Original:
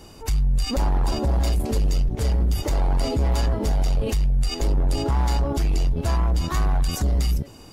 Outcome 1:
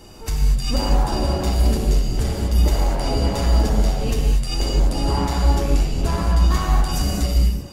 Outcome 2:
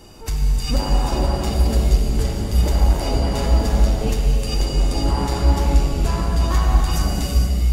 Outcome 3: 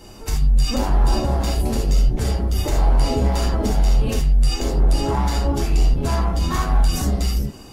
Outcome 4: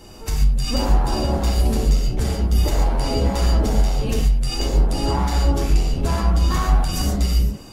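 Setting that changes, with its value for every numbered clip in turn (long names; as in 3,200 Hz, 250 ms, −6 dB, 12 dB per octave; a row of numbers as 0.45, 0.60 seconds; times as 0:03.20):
reverb whose tail is shaped and stops, gate: 270, 500, 100, 160 milliseconds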